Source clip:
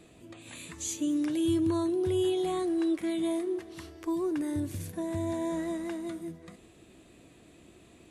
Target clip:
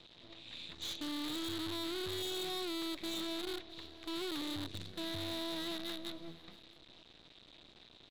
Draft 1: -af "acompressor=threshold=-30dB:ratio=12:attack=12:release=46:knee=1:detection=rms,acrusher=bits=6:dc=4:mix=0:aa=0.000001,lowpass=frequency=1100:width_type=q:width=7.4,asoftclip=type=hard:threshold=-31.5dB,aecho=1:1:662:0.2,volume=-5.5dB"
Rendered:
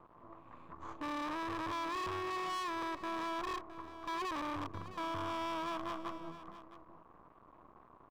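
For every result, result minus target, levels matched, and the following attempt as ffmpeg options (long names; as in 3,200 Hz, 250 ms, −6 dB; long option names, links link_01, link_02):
1,000 Hz band +12.0 dB; echo-to-direct +8.5 dB
-af "acompressor=threshold=-30dB:ratio=12:attack=12:release=46:knee=1:detection=rms,acrusher=bits=6:dc=4:mix=0:aa=0.000001,lowpass=frequency=3800:width_type=q:width=7.4,asoftclip=type=hard:threshold=-31.5dB,aecho=1:1:662:0.2,volume=-5.5dB"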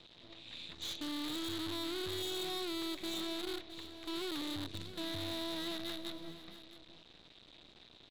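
echo-to-direct +8.5 dB
-af "acompressor=threshold=-30dB:ratio=12:attack=12:release=46:knee=1:detection=rms,acrusher=bits=6:dc=4:mix=0:aa=0.000001,lowpass=frequency=3800:width_type=q:width=7.4,asoftclip=type=hard:threshold=-31.5dB,aecho=1:1:662:0.075,volume=-5.5dB"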